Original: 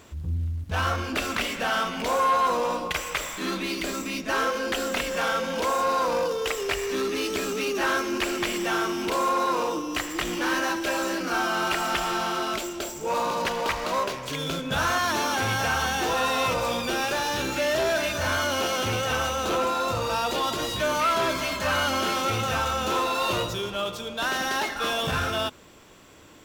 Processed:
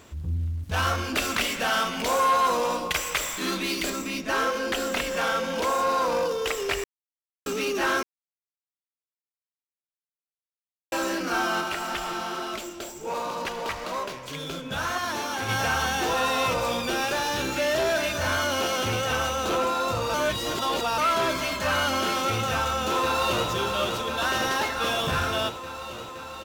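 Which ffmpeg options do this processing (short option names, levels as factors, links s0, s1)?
-filter_complex "[0:a]asettb=1/sr,asplit=3[s0][s1][s2];[s0]atrim=end=0.634[s3];[s1]atrim=start=0.63:end=3.9,asetpts=PTS-STARTPTS,afade=t=in:d=0.004:c=qsin,afade=t=out:st=3.266:d=0.004:c=qsin,highshelf=f=3600:g=6[s4];[s2]atrim=start=3.896[s5];[s3][s4]acrossfade=d=0.004:c1=hsin:c2=qsin[s6];[s6][s5]acrossfade=d=0.004:c1=qsin:c2=hsin,asplit=3[s7][s8][s9];[s7]afade=t=out:st=11.6:d=0.02[s10];[s8]flanger=delay=2.4:depth=7.6:regen=67:speed=2:shape=sinusoidal,afade=t=in:st=11.6:d=0.02,afade=t=out:st=15.48:d=0.02[s11];[s9]afade=t=in:st=15.48:d=0.02[s12];[s10][s11][s12]amix=inputs=3:normalize=0,asplit=2[s13][s14];[s14]afade=t=in:st=22.51:d=0.01,afade=t=out:st=23.49:d=0.01,aecho=0:1:520|1040|1560|2080|2600|3120|3640|4160|4680|5200|5720|6240:0.530884|0.424708|0.339766|0.271813|0.21745|0.17396|0.139168|0.111335|0.0890676|0.0712541|0.0570033|0.0456026[s15];[s13][s15]amix=inputs=2:normalize=0,asplit=7[s16][s17][s18][s19][s20][s21][s22];[s16]atrim=end=6.84,asetpts=PTS-STARTPTS,afade=t=out:st=6.836:d=0.004:c=hsin[s23];[s17]atrim=start=6.84:end=7.46,asetpts=PTS-STARTPTS,volume=0[s24];[s18]atrim=start=7.46:end=8.03,asetpts=PTS-STARTPTS,afade=t=in:d=0.004:c=hsin,afade=t=out:st=0.566:d=0.004:c=hsin[s25];[s19]atrim=start=8.03:end=10.92,asetpts=PTS-STARTPTS,volume=0[s26];[s20]atrim=start=10.92:end=20.142,asetpts=PTS-STARTPTS,afade=t=in:d=0.004:c=hsin[s27];[s21]atrim=start=20.138:end=20.982,asetpts=PTS-STARTPTS,areverse[s28];[s22]atrim=start=20.978[s29];[s23][s24][s25][s26][s27]concat=n=5:v=0:a=1[s30];[s30][s28]acrossfade=d=0.004:c1=hsin:c2=hsin[s31];[s31][s29]acrossfade=d=0.004:c1=hsin:c2=hsin"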